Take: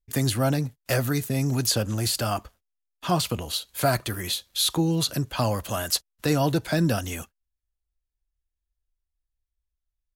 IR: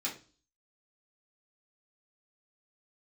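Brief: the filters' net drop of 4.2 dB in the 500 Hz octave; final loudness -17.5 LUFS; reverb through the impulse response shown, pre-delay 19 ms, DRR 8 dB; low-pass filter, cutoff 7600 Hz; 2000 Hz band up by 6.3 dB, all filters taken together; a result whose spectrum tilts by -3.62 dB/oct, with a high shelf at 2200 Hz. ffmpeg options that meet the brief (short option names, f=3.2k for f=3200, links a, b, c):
-filter_complex "[0:a]lowpass=7.6k,equalizer=f=500:t=o:g=-6.5,equalizer=f=2k:t=o:g=6.5,highshelf=f=2.2k:g=4,asplit=2[a][b];[1:a]atrim=start_sample=2205,adelay=19[c];[b][c]afir=irnorm=-1:irlink=0,volume=-11.5dB[d];[a][d]amix=inputs=2:normalize=0,volume=6.5dB"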